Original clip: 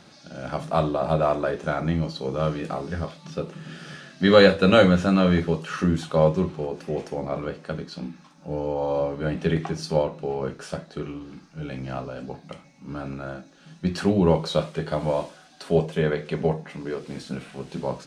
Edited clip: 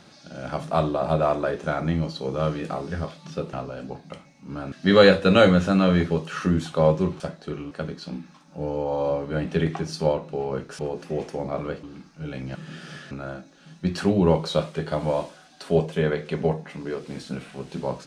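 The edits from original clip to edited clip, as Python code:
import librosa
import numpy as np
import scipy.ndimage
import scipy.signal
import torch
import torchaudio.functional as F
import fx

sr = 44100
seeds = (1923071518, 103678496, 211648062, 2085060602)

y = fx.edit(x, sr, fx.swap(start_s=3.53, length_s=0.56, other_s=11.92, other_length_s=1.19),
    fx.swap(start_s=6.57, length_s=1.04, other_s=10.69, other_length_s=0.51), tone=tone)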